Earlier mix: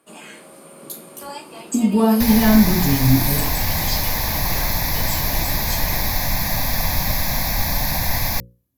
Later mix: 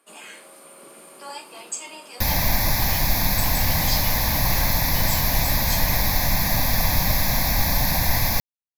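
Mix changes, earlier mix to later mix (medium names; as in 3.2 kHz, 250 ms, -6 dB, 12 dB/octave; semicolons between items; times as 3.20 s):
speech: muted; first sound: add high-pass 820 Hz 6 dB/octave; reverb: off; master: remove hum notches 60/120/180/240/300/360/420/480/540 Hz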